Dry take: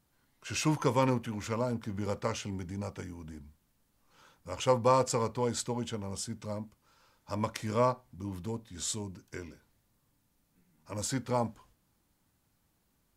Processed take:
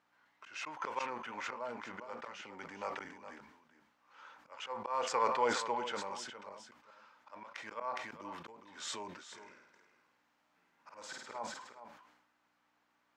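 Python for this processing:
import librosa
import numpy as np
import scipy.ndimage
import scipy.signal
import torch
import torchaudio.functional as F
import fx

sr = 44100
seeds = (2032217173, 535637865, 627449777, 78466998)

y = fx.peak_eq(x, sr, hz=4100.0, db=-7.0, octaves=1.3)
y = fx.auto_swell(y, sr, attack_ms=403.0)
y = fx.air_absorb(y, sr, metres=200.0)
y = fx.room_flutter(y, sr, wall_m=8.8, rt60_s=0.84, at=(9.31, 11.38), fade=0.02)
y = fx.add_hum(y, sr, base_hz=60, snr_db=23)
y = scipy.signal.sosfilt(scipy.signal.butter(2, 930.0, 'highpass', fs=sr, output='sos'), y)
y = y + 10.0 ** (-11.5 / 20.0) * np.pad(y, (int(413 * sr / 1000.0), 0))[:len(y)]
y = fx.sustainer(y, sr, db_per_s=57.0)
y = y * 10.0 ** (9.5 / 20.0)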